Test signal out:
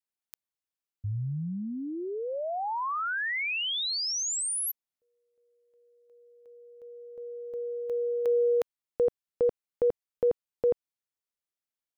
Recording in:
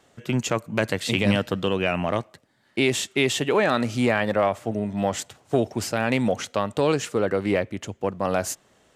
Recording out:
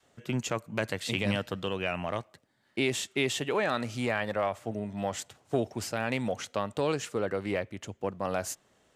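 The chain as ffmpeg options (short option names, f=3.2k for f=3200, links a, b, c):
-af "adynamicequalizer=threshold=0.0224:dfrequency=260:dqfactor=0.71:tfrequency=260:tqfactor=0.71:attack=5:release=100:ratio=0.375:range=2.5:mode=cutabove:tftype=bell,volume=-6.5dB"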